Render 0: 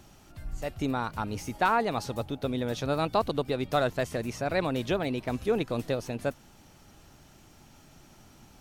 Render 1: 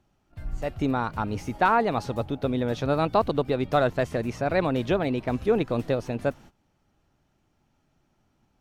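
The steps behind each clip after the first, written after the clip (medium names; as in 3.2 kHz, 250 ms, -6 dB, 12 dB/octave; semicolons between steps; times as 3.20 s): treble shelf 4.1 kHz -12 dB; gate -49 dBFS, range -18 dB; trim +4.5 dB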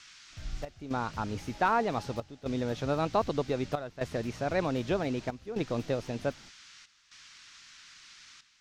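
band noise 1.2–6.3 kHz -48 dBFS; trance gate "xxxxx..xxxxx" 116 bpm -12 dB; trim -5.5 dB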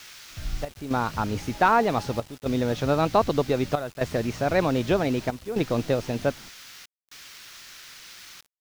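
bit crusher 9-bit; trim +7 dB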